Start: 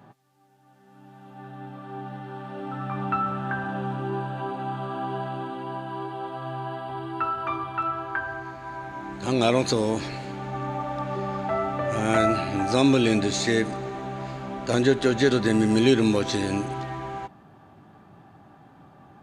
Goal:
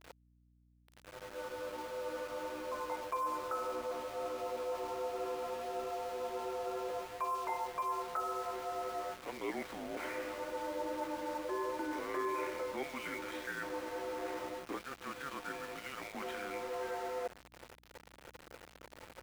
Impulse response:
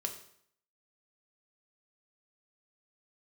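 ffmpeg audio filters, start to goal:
-af "highpass=f=380:t=q:w=0.5412,highpass=f=380:t=q:w=1.307,lowpass=f=2.8k:t=q:w=0.5176,lowpass=f=2.8k:t=q:w=0.7071,lowpass=f=2.8k:t=q:w=1.932,afreqshift=-280,areverse,acompressor=threshold=-42dB:ratio=4,areverse,highpass=f=290:w=0.5412,highpass=f=290:w=1.3066,aeval=exprs='val(0)*gte(abs(val(0)),0.00316)':c=same,aeval=exprs='val(0)+0.000251*(sin(2*PI*60*n/s)+sin(2*PI*2*60*n/s)/2+sin(2*PI*3*60*n/s)/3+sin(2*PI*4*60*n/s)/4+sin(2*PI*5*60*n/s)/5)':c=same,volume=5dB"

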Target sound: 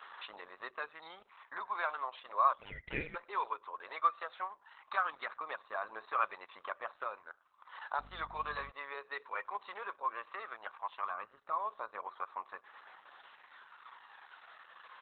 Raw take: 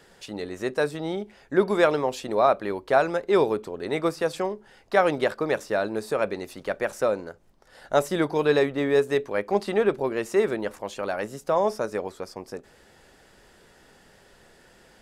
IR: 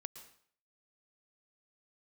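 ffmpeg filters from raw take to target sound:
-filter_complex "[0:a]asplit=3[a][b][c];[a]afade=t=out:st=11.09:d=0.02[d];[b]aemphasis=mode=reproduction:type=riaa,afade=t=in:st=11.09:d=0.02,afade=t=out:st=11.58:d=0.02[e];[c]afade=t=in:st=11.58:d=0.02[f];[d][e][f]amix=inputs=3:normalize=0,acompressor=threshold=-46dB:ratio=2,highpass=f=1.1k:t=q:w=6.3,aphaser=in_gain=1:out_gain=1:delay=2.1:decay=0.37:speed=0.16:type=sinusoidal,asplit=3[g][h][i];[g]afade=t=out:st=2.58:d=0.02[j];[h]aeval=exprs='val(0)*sin(2*PI*1000*n/s)':c=same,afade=t=in:st=2.58:d=0.02,afade=t=out:st=3.14:d=0.02[k];[i]afade=t=in:st=3.14:d=0.02[l];[j][k][l]amix=inputs=3:normalize=0,asettb=1/sr,asplit=3[m][n][o];[m]atrim=end=7.994[p];[n]atrim=start=7.99:end=8.71,asetpts=PTS-STARTPTS,afade=t=in:d=0.004:c=qsin,afade=t=out:st=0.716:d=0.004:c=qsin,aeval=exprs='val(0)+0.00251*(sin(2*PI*50*n/s)+sin(2*PI*2*50*n/s)/2+sin(2*PI*3*50*n/s)/3+sin(2*PI*4*50*n/s)/4+sin(2*PI*5*50*n/s)/5)':c=same[q];[o]atrim=start=8.706[r];[p][q]acrossfade=d=0.004:c1=hsin:c2=qsin[s];[s][r]acrossfade=d=0.004:c1=qsin:c2=hsin,aresample=11025,aresample=44100,asplit=2[t][u];[u]adelay=100,highpass=300,lowpass=3.4k,asoftclip=type=hard:threshold=-28dB,volume=-24dB[v];[t][v]amix=inputs=2:normalize=0" -ar 48000 -c:a libopus -b:a 8k

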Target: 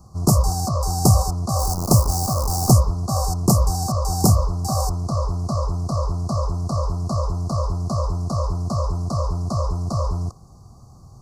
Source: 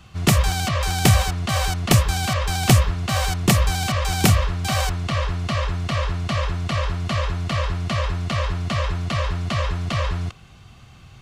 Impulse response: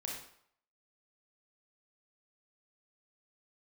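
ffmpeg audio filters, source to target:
-filter_complex "[0:a]asettb=1/sr,asplit=3[a][b][c];[a]atrim=end=1.594[d];[b]atrim=start=1.59:end=2.71,asetpts=PTS-STARTPTS,afade=t=in:d=0.004:c=qsin,afade=t=out:st=1.116:d=0.004:c=qsin,acrusher=bits=5:dc=4:mix=0:aa=0.000001[e];[c]atrim=start=2.706[f];[d][e]acrossfade=d=0.004:c1=hsin:c2=qsin[g];[g][f]acrossfade=d=0.004:c1=qsin:c2=hsin,asuperstop=centerf=2400:order=12:qfactor=0.66,volume=1dB"

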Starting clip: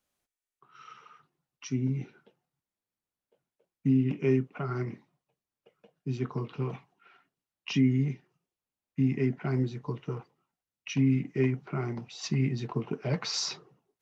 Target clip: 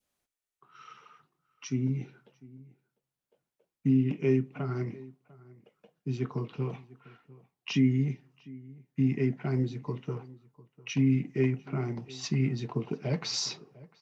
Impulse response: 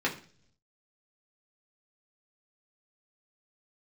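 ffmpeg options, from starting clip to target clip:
-filter_complex "[0:a]adynamicequalizer=threshold=0.00224:dfrequency=1300:dqfactor=1.3:tfrequency=1300:tqfactor=1.3:attack=5:release=100:ratio=0.375:range=3:mode=cutabove:tftype=bell,asplit=2[a][b];[b]adelay=699.7,volume=-21dB,highshelf=f=4k:g=-15.7[c];[a][c]amix=inputs=2:normalize=0,asplit=2[d][e];[1:a]atrim=start_sample=2205,adelay=33[f];[e][f]afir=irnorm=-1:irlink=0,volume=-31dB[g];[d][g]amix=inputs=2:normalize=0"

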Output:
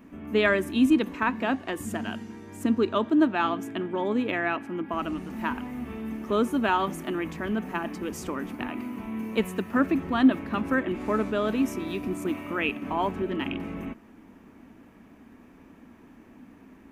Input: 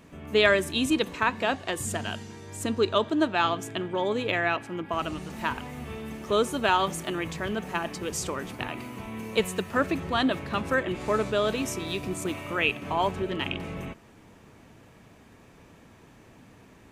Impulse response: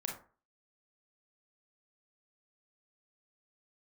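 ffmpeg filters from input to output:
-af "equalizer=f=125:t=o:w=1:g=-11,equalizer=f=250:t=o:w=1:g=11,equalizer=f=500:t=o:w=1:g=-5,equalizer=f=4k:t=o:w=1:g=-8,equalizer=f=8k:t=o:w=1:g=-9"

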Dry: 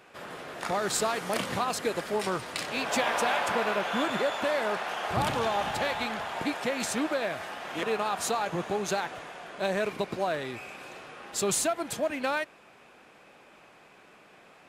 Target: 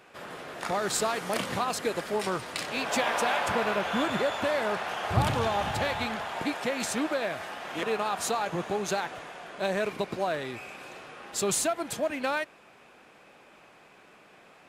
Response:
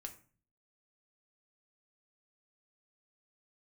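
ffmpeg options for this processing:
-filter_complex "[0:a]asettb=1/sr,asplit=3[a][b][c];[a]atrim=end=3.444[d];[b]atrim=start=3.44:end=6.16,asetpts=PTS-STARTPTS,afade=t=in:d=0.004:c=qsin,afade=t=out:st=2.716:d=0.004:c=qsin,equalizer=f=88:t=o:w=1.3:g=11.5[e];[c]atrim=start=6.156[f];[d][e]acrossfade=d=0.004:c1=hsin:c2=qsin[g];[g][f]acrossfade=d=0.004:c1=qsin:c2=hsin"

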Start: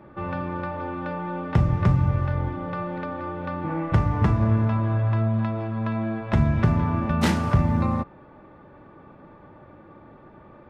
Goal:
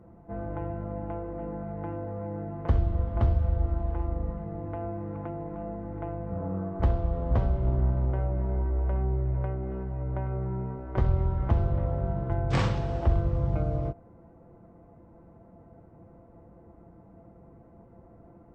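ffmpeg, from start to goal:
-af "asetrate=25442,aresample=44100,volume=-4.5dB"

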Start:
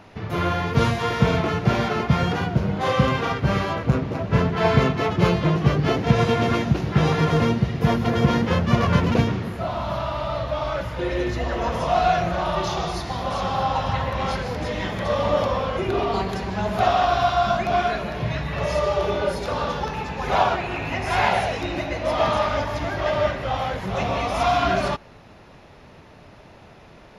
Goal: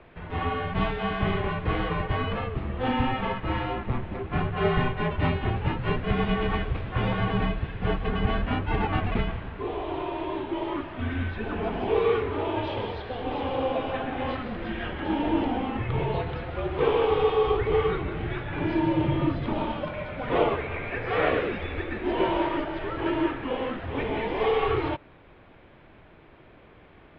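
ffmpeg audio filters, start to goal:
-filter_complex "[0:a]highpass=f=180:t=q:w=0.5412,highpass=f=180:t=q:w=1.307,lowpass=f=3.6k:t=q:w=0.5176,lowpass=f=3.6k:t=q:w=0.7071,lowpass=f=3.6k:t=q:w=1.932,afreqshift=-270,asettb=1/sr,asplit=3[a][b][c];[a]atrim=end=17.104[d];[b]atrim=start=17.1:end=19.63,asetpts=PTS-STARTPTS,afade=t=in:d=0.004:c=qsin,afade=t=out:st=2.526:d=0.004:c=qsin,lowshelf=f=230:g=6[e];[c]atrim=start=19.626[f];[d][e]acrossfade=d=0.004:c1=hsin:c2=qsin[g];[g][f]acrossfade=d=0.004:c1=qsin:c2=hsin,volume=-3.5dB"

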